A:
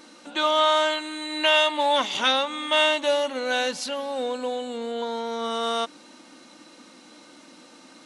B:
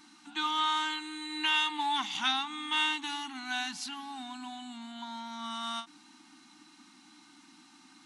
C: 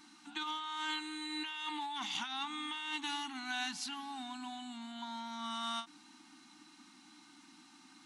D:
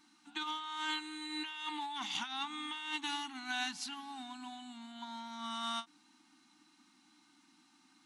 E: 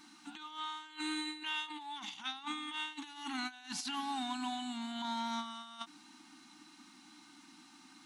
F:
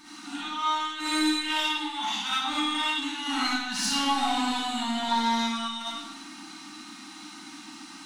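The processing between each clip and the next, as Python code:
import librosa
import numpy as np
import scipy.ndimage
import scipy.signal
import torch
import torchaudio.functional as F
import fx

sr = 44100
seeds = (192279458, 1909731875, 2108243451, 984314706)

y1 = scipy.signal.sosfilt(scipy.signal.ellip(3, 1.0, 40, [320.0, 770.0], 'bandstop', fs=sr, output='sos'), x)
y1 = fx.end_taper(y1, sr, db_per_s=260.0)
y1 = y1 * 10.0 ** (-7.0 / 20.0)
y2 = fx.over_compress(y1, sr, threshold_db=-34.0, ratio=-1.0)
y2 = y2 * 10.0 ** (-4.5 / 20.0)
y3 = fx.upward_expand(y2, sr, threshold_db=-54.0, expansion=1.5)
y3 = y3 * 10.0 ** (1.5 / 20.0)
y4 = fx.over_compress(y3, sr, threshold_db=-45.0, ratio=-0.5)
y4 = y4 * 10.0 ** (4.5 / 20.0)
y5 = 10.0 ** (-34.0 / 20.0) * np.tanh(y4 / 10.0 ** (-34.0 / 20.0))
y5 = fx.rev_freeverb(y5, sr, rt60_s=0.86, hf_ratio=0.95, predelay_ms=15, drr_db=-9.0)
y5 = y5 * 10.0 ** (6.0 / 20.0)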